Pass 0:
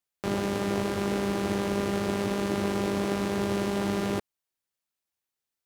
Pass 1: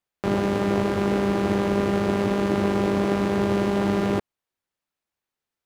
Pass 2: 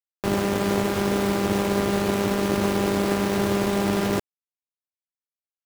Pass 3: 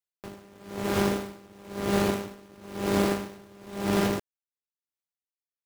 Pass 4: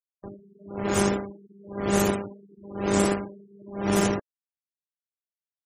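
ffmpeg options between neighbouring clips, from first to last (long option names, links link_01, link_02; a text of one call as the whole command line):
ffmpeg -i in.wav -af "highshelf=frequency=3800:gain=-11,volume=6dB" out.wav
ffmpeg -i in.wav -af "aeval=exprs='sgn(val(0))*max(abs(val(0))-0.00841,0)':channel_layout=same,acrusher=bits=4:mix=0:aa=0.000001" out.wav
ffmpeg -i in.wav -af "aeval=exprs='val(0)*pow(10,-29*(0.5-0.5*cos(2*PI*1*n/s))/20)':channel_layout=same" out.wav
ffmpeg -i in.wav -af "afftfilt=real='re*gte(hypot(re,im),0.0158)':imag='im*gte(hypot(re,im),0.0158)':win_size=1024:overlap=0.75,aexciter=amount=8.2:drive=6.1:freq=6400,volume=2dB" out.wav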